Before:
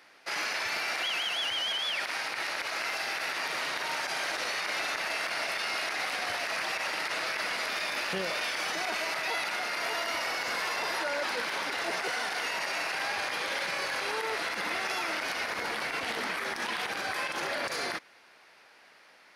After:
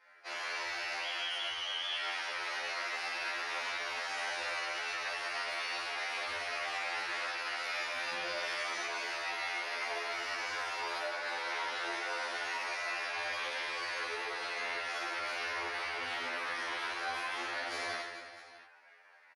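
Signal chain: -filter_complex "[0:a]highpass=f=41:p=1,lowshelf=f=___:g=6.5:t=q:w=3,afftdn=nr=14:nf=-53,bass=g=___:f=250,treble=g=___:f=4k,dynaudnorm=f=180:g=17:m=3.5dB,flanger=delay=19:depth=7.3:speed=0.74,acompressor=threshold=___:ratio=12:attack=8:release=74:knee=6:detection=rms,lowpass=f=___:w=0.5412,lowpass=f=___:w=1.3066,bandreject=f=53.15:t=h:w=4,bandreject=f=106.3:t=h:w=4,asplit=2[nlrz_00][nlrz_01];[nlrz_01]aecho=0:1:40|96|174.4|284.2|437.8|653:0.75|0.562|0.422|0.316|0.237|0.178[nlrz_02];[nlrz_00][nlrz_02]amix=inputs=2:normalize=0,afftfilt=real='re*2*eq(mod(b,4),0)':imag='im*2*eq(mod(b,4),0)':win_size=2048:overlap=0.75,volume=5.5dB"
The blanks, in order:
120, -12, -3, -41dB, 11k, 11k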